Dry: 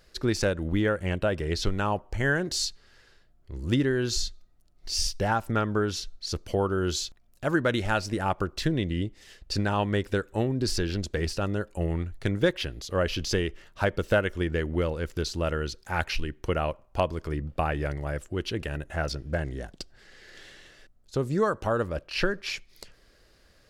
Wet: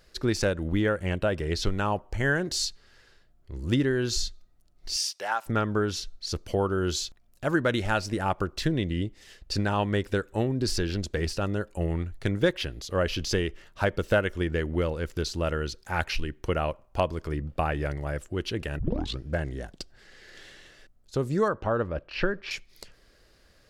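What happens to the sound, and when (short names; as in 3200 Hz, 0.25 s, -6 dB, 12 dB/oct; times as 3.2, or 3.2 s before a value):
4.96–5.46 HPF 770 Hz
18.79 tape start 0.41 s
21.48–22.51 Bessel low-pass 2600 Hz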